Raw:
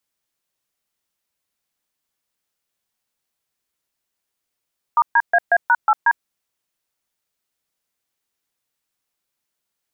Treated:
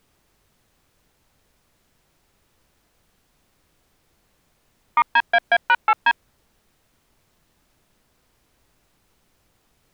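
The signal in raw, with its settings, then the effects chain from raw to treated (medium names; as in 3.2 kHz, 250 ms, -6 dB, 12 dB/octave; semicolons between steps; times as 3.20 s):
DTMF "*DAA#8D", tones 51 ms, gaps 131 ms, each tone -13.5 dBFS
self-modulated delay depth 0.087 ms; added noise pink -65 dBFS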